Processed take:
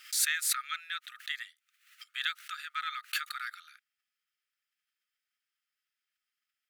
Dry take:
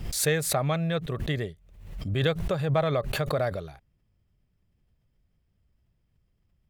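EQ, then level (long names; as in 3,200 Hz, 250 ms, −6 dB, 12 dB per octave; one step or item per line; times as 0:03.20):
linear-phase brick-wall high-pass 1,200 Hz
0.0 dB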